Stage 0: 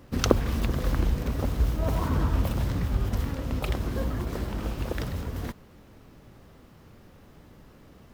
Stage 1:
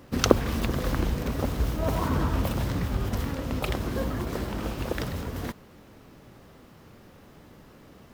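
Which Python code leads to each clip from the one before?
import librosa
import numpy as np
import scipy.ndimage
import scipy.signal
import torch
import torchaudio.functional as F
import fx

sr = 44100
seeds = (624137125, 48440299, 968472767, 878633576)

y = fx.low_shelf(x, sr, hz=93.0, db=-8.5)
y = F.gain(torch.from_numpy(y), 3.0).numpy()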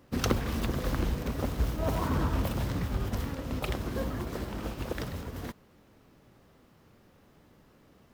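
y = 10.0 ** (-17.0 / 20.0) * np.tanh(x / 10.0 ** (-17.0 / 20.0))
y = fx.upward_expand(y, sr, threshold_db=-40.0, expansion=1.5)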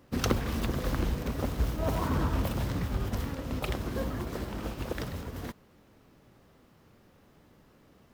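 y = x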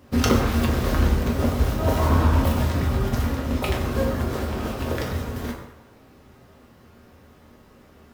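y = fx.rev_fdn(x, sr, rt60_s=1.1, lf_ratio=0.75, hf_ratio=0.65, size_ms=75.0, drr_db=-1.0)
y = F.gain(torch.from_numpy(y), 5.5).numpy()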